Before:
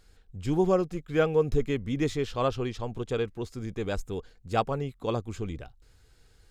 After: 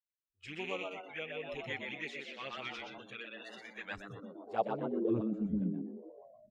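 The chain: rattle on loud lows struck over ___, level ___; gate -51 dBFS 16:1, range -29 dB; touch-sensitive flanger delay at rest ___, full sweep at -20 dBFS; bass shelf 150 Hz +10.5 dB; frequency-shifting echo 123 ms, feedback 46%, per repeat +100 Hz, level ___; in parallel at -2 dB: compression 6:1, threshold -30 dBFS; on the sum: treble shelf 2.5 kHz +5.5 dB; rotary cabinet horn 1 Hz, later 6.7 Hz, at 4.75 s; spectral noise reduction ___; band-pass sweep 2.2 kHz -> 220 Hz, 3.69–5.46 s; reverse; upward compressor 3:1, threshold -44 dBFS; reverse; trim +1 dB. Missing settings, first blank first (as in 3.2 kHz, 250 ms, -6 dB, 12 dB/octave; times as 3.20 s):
-30 dBFS, -31 dBFS, 3.5 ms, -4.5 dB, 24 dB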